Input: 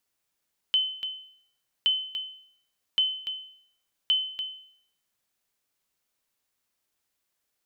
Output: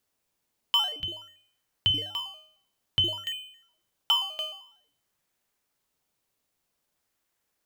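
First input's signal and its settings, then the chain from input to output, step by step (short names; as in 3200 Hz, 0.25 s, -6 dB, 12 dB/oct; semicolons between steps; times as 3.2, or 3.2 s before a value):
sonar ping 3050 Hz, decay 0.62 s, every 1.12 s, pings 4, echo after 0.29 s, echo -8.5 dB -16.5 dBFS
in parallel at -9 dB: decimation with a swept rate 16×, swing 100% 0.51 Hz; on the sum: de-hum 101.8 Hz, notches 15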